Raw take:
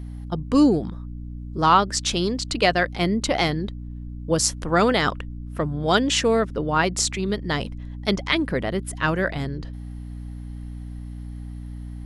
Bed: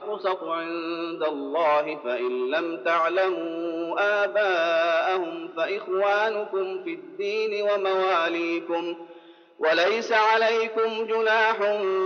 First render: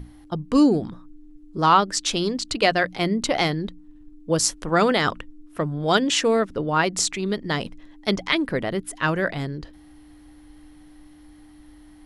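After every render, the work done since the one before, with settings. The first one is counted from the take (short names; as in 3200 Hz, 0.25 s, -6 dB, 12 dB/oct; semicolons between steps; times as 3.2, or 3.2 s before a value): notches 60/120/180/240 Hz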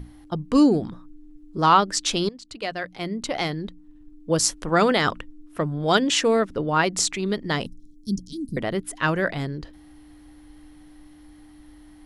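2.29–4.39 fade in, from -17.5 dB; 7.66–8.57 inverse Chebyshev band-stop 780–2000 Hz, stop band 70 dB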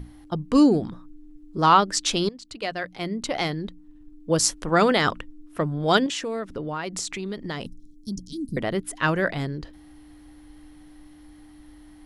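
6.06–8.17 compressor 4:1, threshold -28 dBFS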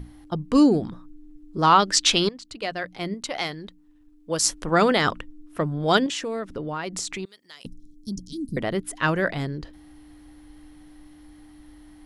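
1.79–2.41 bell 4500 Hz -> 1300 Hz +8 dB 2.5 oct; 3.14–4.45 low shelf 480 Hz -9.5 dB; 7.25–7.65 differentiator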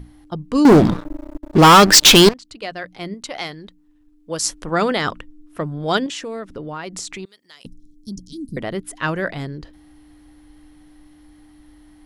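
0.65–2.34 sample leveller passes 5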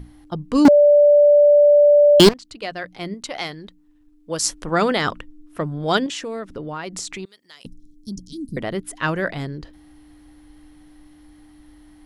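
0.68–2.2 bleep 585 Hz -8.5 dBFS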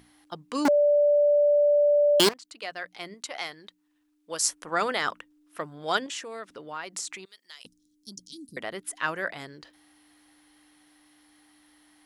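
HPF 1400 Hz 6 dB/oct; dynamic EQ 3900 Hz, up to -6 dB, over -41 dBFS, Q 0.72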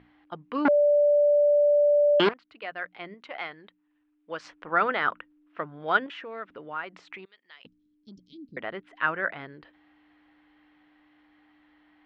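LPF 2800 Hz 24 dB/oct; dynamic EQ 1400 Hz, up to +6 dB, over -46 dBFS, Q 3.5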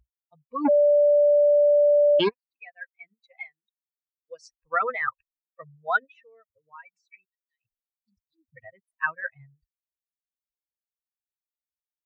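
per-bin expansion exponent 3; in parallel at +1 dB: compressor, threshold -30 dBFS, peak gain reduction 10 dB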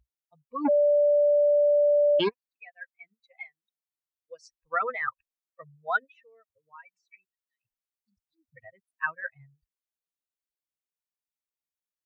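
gain -3 dB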